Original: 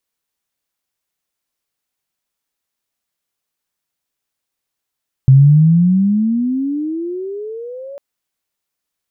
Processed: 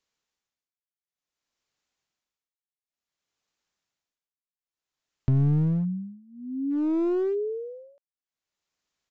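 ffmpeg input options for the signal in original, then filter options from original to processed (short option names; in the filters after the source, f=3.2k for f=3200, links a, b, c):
-f lavfi -i "aevalsrc='pow(10,(-3-25*t/2.7)/20)*sin(2*PI*130*2.7/log(570/130)*(exp(log(570/130)*t/2.7)-1))':d=2.7:s=44100"
-af "acompressor=threshold=-18dB:ratio=6,tremolo=f=0.56:d=0.98,aresample=16000,aeval=exprs='clip(val(0),-1,0.0668)':c=same,aresample=44100"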